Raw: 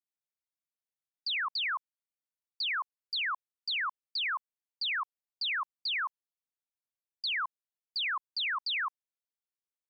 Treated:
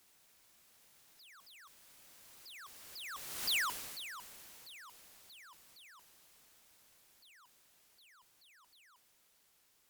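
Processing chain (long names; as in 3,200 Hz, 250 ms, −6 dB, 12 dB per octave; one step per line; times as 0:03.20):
sign of each sample alone
source passing by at 0:03.54, 19 m/s, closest 2 metres
level +5.5 dB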